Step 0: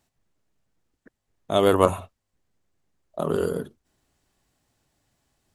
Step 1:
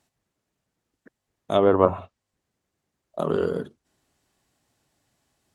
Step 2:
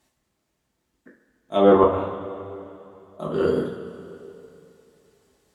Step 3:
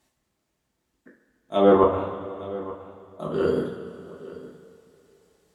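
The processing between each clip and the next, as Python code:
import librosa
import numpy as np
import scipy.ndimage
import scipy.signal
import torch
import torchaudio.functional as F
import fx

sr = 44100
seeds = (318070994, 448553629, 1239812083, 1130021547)

y1 = fx.highpass(x, sr, hz=98.0, slope=6)
y1 = fx.env_lowpass_down(y1, sr, base_hz=1300.0, full_db=-15.5)
y1 = F.gain(torch.from_numpy(y1), 1.0).numpy()
y2 = y1 + 10.0 ** (-20.5 / 20.0) * np.pad(y1, (int(147 * sr / 1000.0), 0))[:len(y1)]
y2 = fx.auto_swell(y2, sr, attack_ms=132.0)
y2 = fx.rev_double_slope(y2, sr, seeds[0], early_s=0.39, late_s=2.9, knee_db=-15, drr_db=-3.5)
y3 = y2 + 10.0 ** (-18.0 / 20.0) * np.pad(y2, (int(869 * sr / 1000.0), 0))[:len(y2)]
y3 = F.gain(torch.from_numpy(y3), -1.5).numpy()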